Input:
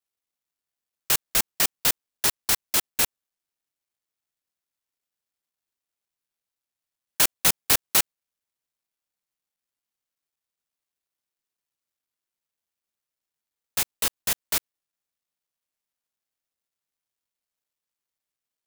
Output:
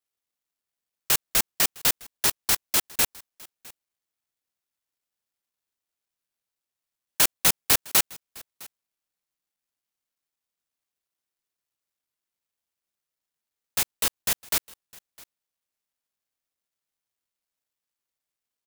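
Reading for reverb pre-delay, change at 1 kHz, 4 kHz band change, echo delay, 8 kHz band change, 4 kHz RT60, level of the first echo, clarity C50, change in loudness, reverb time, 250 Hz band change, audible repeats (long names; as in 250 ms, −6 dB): no reverb audible, 0.0 dB, 0.0 dB, 658 ms, 0.0 dB, no reverb audible, −23.5 dB, no reverb audible, 0.0 dB, no reverb audible, 0.0 dB, 1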